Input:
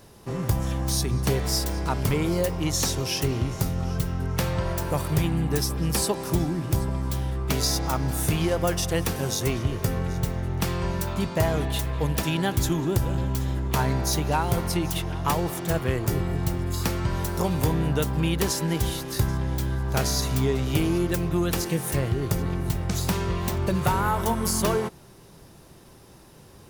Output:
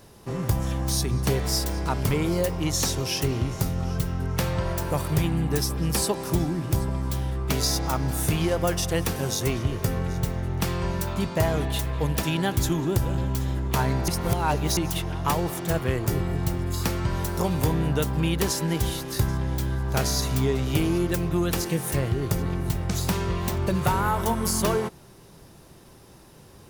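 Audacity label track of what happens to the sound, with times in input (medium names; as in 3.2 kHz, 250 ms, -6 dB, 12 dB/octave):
14.080000	14.770000	reverse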